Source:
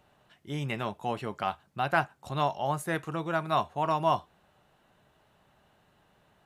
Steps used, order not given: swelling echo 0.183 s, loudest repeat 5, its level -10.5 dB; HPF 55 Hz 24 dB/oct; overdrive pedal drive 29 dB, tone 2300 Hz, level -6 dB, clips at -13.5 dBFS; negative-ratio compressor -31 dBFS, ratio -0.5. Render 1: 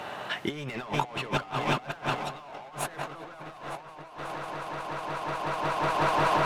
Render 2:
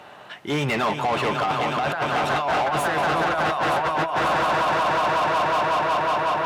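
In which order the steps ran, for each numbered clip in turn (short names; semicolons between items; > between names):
HPF > overdrive pedal > swelling echo > negative-ratio compressor; swelling echo > negative-ratio compressor > overdrive pedal > HPF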